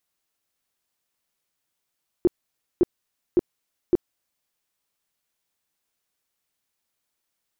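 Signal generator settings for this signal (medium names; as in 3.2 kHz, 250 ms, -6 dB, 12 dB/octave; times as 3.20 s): tone bursts 353 Hz, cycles 8, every 0.56 s, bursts 4, -12.5 dBFS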